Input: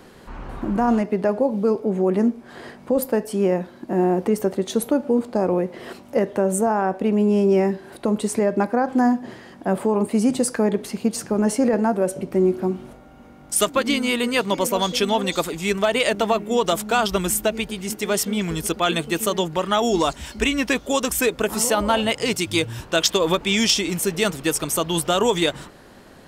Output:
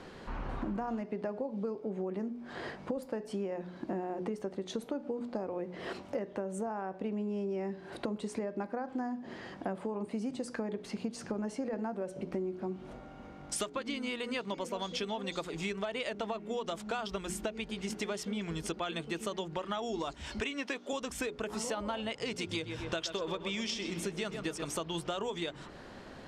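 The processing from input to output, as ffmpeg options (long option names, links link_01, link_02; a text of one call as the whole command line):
ffmpeg -i in.wav -filter_complex "[0:a]asettb=1/sr,asplit=3[link_01][link_02][link_03];[link_01]atrim=end=20.404[link_04];[link_02]atrim=start=20.4:end=20.93,asetpts=PTS-STARTPTS,afade=type=in:duration=0.004:curve=qsin,afade=type=out:start_time=0.526:duration=0.004:curve=qsin,highpass=290[link_05];[link_03]atrim=start=20.926[link_06];[link_04][link_05]acrossfade=duration=0.004:curve1=hsin:curve2=qsin[link_07];[link_07][link_06]acrossfade=duration=0.004:curve1=qsin:curve2=hsin,asettb=1/sr,asplit=3[link_08][link_09][link_10];[link_08]atrim=end=22.254[link_11];[link_09]atrim=start=22.25:end=24.71,asetpts=PTS-STARTPTS,afade=type=in:duration=0.004:curve=qsin,afade=type=out:start_time=2.456:duration=0.004:curve=qsin,asplit=2[link_12][link_13];[link_13]adelay=127,lowpass=frequency=2700:poles=1,volume=-9dB,asplit=2[link_14][link_15];[link_15]adelay=127,lowpass=frequency=2700:poles=1,volume=0.51,asplit=2[link_16][link_17];[link_17]adelay=127,lowpass=frequency=2700:poles=1,volume=0.51,asplit=2[link_18][link_19];[link_19]adelay=127,lowpass=frequency=2700:poles=1,volume=0.51,asplit=2[link_20][link_21];[link_21]adelay=127,lowpass=frequency=2700:poles=1,volume=0.51,asplit=2[link_22][link_23];[link_23]adelay=127,lowpass=frequency=2700:poles=1,volume=0.51[link_24];[link_12][link_14][link_16][link_18][link_20][link_22][link_24]amix=inputs=7:normalize=0,atrim=end_sample=108486[link_25];[link_10]atrim=start=24.706[link_26];[link_11][link_25]acrossfade=duration=0.004:curve1=hsin:curve2=qsin[link_27];[link_27][link_26]acrossfade=duration=0.004:curve1=qsin:curve2=hsin,lowpass=5700,bandreject=frequency=60:width_type=h:width=6,bandreject=frequency=120:width_type=h:width=6,bandreject=frequency=180:width_type=h:width=6,bandreject=frequency=240:width_type=h:width=6,bandreject=frequency=300:width_type=h:width=6,bandreject=frequency=360:width_type=h:width=6,bandreject=frequency=420:width_type=h:width=6,acompressor=threshold=-31dB:ratio=10,volume=-2dB" out.wav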